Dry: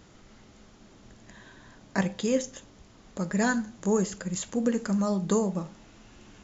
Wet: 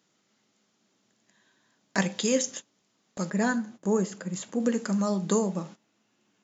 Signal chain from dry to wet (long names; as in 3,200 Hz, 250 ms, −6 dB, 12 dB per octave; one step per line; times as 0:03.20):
high-pass filter 150 Hz 24 dB per octave
noise gate −43 dBFS, range −18 dB
high-shelf EQ 2,200 Hz +9 dB, from 0:03.30 −4.5 dB, from 0:04.60 +3 dB